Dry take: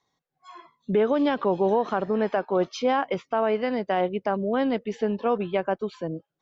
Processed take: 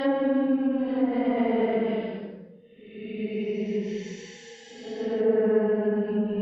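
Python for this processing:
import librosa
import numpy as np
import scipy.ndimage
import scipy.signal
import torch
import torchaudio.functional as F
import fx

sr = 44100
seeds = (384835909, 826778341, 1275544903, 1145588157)

y = fx.paulstretch(x, sr, seeds[0], factor=13.0, window_s=0.1, from_s=4.62)
y = fx.env_lowpass_down(y, sr, base_hz=1900.0, full_db=-20.5)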